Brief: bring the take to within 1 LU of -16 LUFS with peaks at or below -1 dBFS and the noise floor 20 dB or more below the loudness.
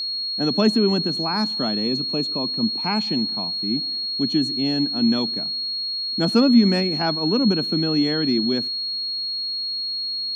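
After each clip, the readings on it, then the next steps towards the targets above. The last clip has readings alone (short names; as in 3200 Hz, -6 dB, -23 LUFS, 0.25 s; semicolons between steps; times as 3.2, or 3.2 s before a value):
steady tone 4300 Hz; tone level -24 dBFS; loudness -21.0 LUFS; peak -5.5 dBFS; loudness target -16.0 LUFS
-> notch 4300 Hz, Q 30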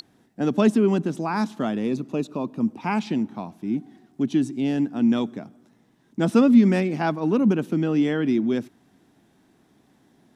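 steady tone none; loudness -23.0 LUFS; peak -6.0 dBFS; loudness target -16.0 LUFS
-> gain +7 dB; limiter -1 dBFS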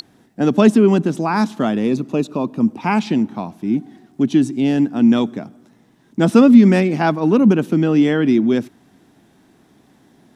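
loudness -16.0 LUFS; peak -1.0 dBFS; noise floor -55 dBFS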